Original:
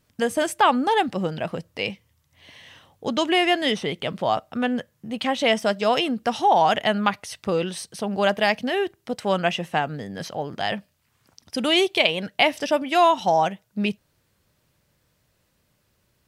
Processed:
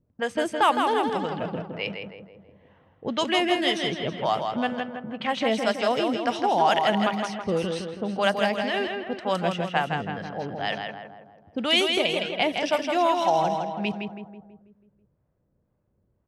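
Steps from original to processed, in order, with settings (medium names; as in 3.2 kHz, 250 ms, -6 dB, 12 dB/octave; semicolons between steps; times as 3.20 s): harmonic tremolo 2 Hz, depth 70%, crossover 570 Hz; feedback delay 163 ms, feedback 54%, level -5 dB; level-controlled noise filter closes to 660 Hz, open at -20 dBFS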